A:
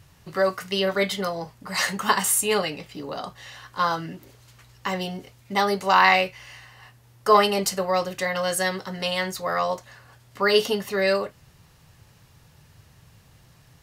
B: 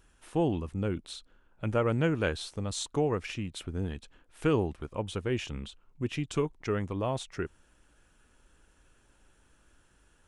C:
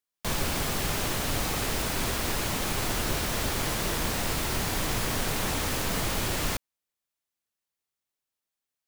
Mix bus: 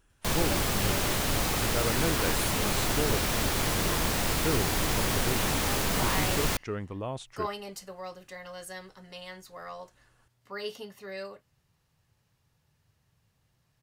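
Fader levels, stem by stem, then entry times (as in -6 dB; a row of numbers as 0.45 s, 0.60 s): -17.5 dB, -4.0 dB, +1.0 dB; 0.10 s, 0.00 s, 0.00 s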